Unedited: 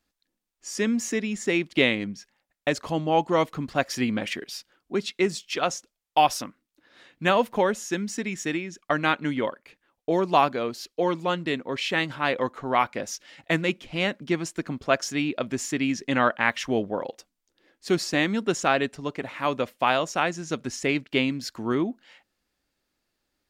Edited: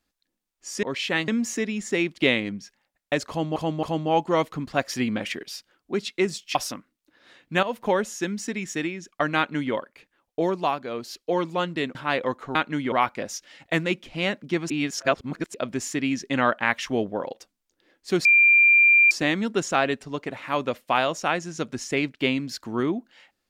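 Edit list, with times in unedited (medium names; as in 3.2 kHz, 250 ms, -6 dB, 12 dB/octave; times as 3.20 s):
2.84–3.11 s: loop, 3 plays
5.56–6.25 s: delete
7.33–7.58 s: fade in, from -13 dB
9.07–9.44 s: copy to 12.70 s
10.12–10.82 s: dip -8 dB, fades 0.35 s
11.65–12.10 s: move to 0.83 s
14.48–15.32 s: reverse
18.03 s: add tone 2.38 kHz -12.5 dBFS 0.86 s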